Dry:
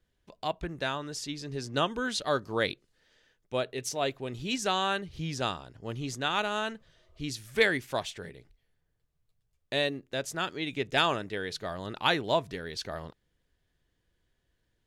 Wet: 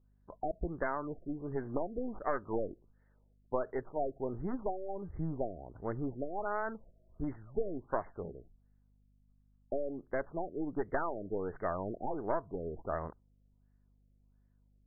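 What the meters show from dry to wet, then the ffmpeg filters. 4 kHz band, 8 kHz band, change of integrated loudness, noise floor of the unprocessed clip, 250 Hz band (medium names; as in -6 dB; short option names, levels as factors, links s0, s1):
under -40 dB, under -40 dB, -7.0 dB, -78 dBFS, -3.0 dB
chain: -af "aeval=exprs='0.299*(cos(1*acos(clip(val(0)/0.299,-1,1)))-cos(1*PI/2))+0.0266*(cos(5*acos(clip(val(0)/0.299,-1,1)))-cos(5*PI/2))+0.0531*(cos(6*acos(clip(val(0)/0.299,-1,1)))-cos(6*PI/2))':c=same,agate=range=0.398:threshold=0.00251:ratio=16:detection=peak,equalizer=f=125:t=o:w=1:g=-10,equalizer=f=250:t=o:w=1:g=-4,equalizer=f=500:t=o:w=1:g=-4,equalizer=f=2000:t=o:w=1:g=-9,equalizer=f=4000:t=o:w=1:g=-4,equalizer=f=8000:t=o:w=1:g=5,acompressor=threshold=0.0251:ratio=6,aeval=exprs='val(0)+0.000282*(sin(2*PI*50*n/s)+sin(2*PI*2*50*n/s)/2+sin(2*PI*3*50*n/s)/3+sin(2*PI*4*50*n/s)/4+sin(2*PI*5*50*n/s)/5)':c=same,afftfilt=real='re*lt(b*sr/1024,690*pow(2200/690,0.5+0.5*sin(2*PI*1.4*pts/sr)))':imag='im*lt(b*sr/1024,690*pow(2200/690,0.5+0.5*sin(2*PI*1.4*pts/sr)))':win_size=1024:overlap=0.75,volume=1.58"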